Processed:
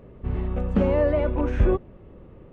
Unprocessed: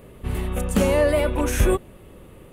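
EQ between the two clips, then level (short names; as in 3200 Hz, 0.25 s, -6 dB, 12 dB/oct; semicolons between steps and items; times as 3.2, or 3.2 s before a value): tape spacing loss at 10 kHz 45 dB; 0.0 dB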